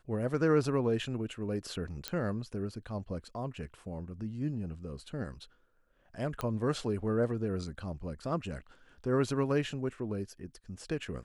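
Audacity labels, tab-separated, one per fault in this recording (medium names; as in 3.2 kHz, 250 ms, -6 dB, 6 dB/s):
2.080000	2.080000	pop -17 dBFS
6.410000	6.410000	pop -19 dBFS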